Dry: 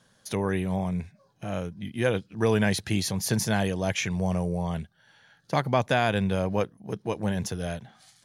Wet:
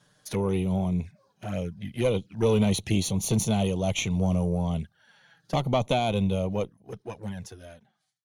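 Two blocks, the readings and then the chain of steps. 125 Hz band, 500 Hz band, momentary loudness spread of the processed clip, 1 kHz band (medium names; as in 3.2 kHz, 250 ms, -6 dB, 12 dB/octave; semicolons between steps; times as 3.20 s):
+1.5 dB, 0.0 dB, 14 LU, -2.5 dB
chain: fade out at the end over 2.33 s; valve stage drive 14 dB, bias 0.75; touch-sensitive flanger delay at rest 7.1 ms, full sweep at -30.5 dBFS; trim +7 dB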